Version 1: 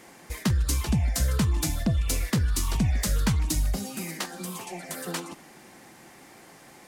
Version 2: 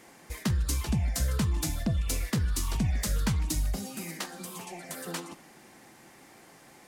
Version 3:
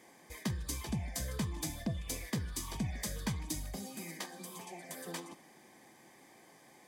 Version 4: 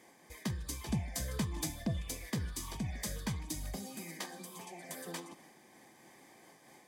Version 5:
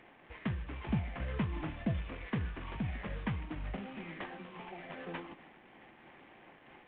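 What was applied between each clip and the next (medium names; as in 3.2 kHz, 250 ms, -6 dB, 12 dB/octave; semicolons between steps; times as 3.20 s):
de-hum 180.8 Hz, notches 29; trim -3.5 dB
comb of notches 1.4 kHz; trim -5 dB
random flutter of the level, depth 50%; trim +2.5 dB
CVSD coder 16 kbps; trim +2 dB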